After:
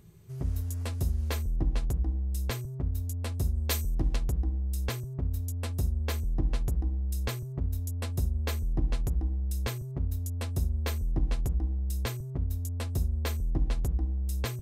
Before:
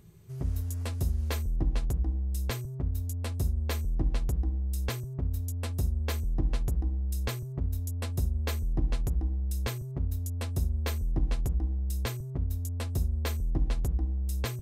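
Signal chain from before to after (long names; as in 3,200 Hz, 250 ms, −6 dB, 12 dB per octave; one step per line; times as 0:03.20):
0:03.54–0:04.16: high-shelf EQ 3,200 Hz +11 dB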